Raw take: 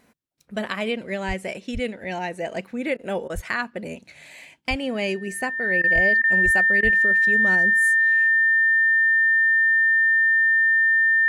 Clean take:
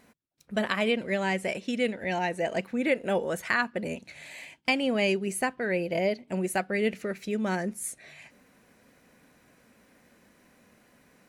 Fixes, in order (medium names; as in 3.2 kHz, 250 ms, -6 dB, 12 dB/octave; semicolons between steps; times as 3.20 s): band-stop 1.8 kHz, Q 30; de-plosive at 1.27/1.73/3.34/4.69/5.94/6.44/6.83 s; interpolate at 2.97/3.28/5.82/6.22/6.81 s, 17 ms